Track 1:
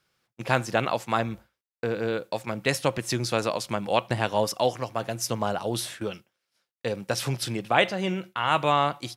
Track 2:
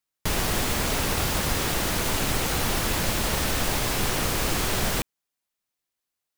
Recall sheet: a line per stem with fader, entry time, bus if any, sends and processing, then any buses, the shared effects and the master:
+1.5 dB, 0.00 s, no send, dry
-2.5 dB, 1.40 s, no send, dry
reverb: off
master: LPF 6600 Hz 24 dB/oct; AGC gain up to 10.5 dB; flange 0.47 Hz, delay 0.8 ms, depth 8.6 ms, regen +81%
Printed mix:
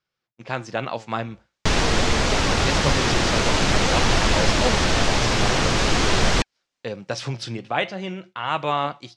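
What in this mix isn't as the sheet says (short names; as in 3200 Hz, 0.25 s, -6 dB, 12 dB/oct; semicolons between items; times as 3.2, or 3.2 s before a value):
stem 1 +1.5 dB -> -5.5 dB; stem 2 -2.5 dB -> +3.5 dB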